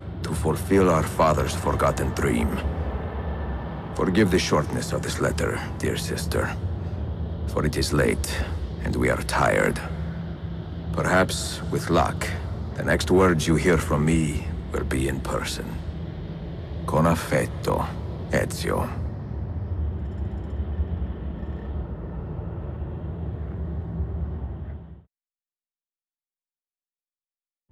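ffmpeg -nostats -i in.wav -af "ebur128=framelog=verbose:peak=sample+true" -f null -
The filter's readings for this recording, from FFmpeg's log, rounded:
Integrated loudness:
  I:         -25.5 LUFS
  Threshold: -35.6 LUFS
Loudness range:
  LRA:        10.1 LU
  Threshold: -46.0 LUFS
  LRA low:   -32.9 LUFS
  LRA high:  -22.8 LUFS
Sample peak:
  Peak:      -10.8 dBFS
True peak:
  Peak:      -10.7 dBFS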